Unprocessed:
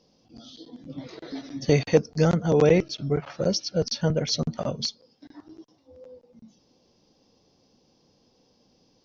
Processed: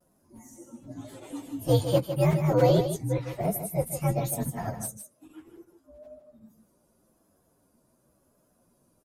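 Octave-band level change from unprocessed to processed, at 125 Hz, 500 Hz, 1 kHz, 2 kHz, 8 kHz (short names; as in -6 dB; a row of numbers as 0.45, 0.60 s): 0.0 dB, -3.0 dB, +2.5 dB, -7.0 dB, n/a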